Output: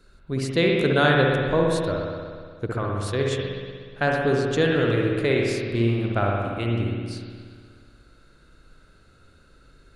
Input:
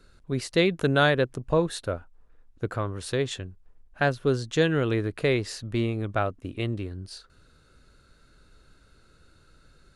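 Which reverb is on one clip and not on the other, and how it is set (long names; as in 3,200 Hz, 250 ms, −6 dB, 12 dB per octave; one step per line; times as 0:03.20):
spring reverb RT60 1.9 s, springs 60 ms, chirp 70 ms, DRR −1.5 dB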